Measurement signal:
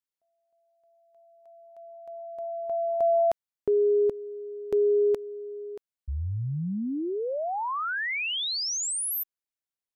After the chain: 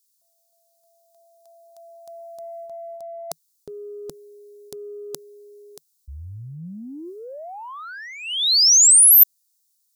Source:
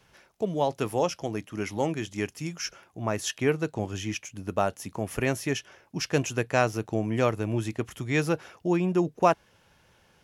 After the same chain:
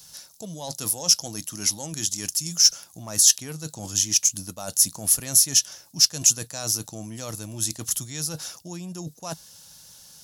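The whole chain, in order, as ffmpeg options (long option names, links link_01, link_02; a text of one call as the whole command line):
ffmpeg -i in.wav -af "equalizer=frequency=160:width_type=o:width=0.33:gain=6,equalizer=frequency=400:width_type=o:width=0.33:gain=-10,equalizer=frequency=3150:width_type=o:width=0.33:gain=-5,areverse,acompressor=threshold=-36dB:ratio=16:attack=64:release=96:knee=1:detection=rms,areverse,aeval=exprs='0.112*(cos(1*acos(clip(val(0)/0.112,-1,1)))-cos(1*PI/2))+0.00501*(cos(5*acos(clip(val(0)/0.112,-1,1)))-cos(5*PI/2))':channel_layout=same,aexciter=amount=9.9:drive=6.8:freq=3500,volume=-1dB" out.wav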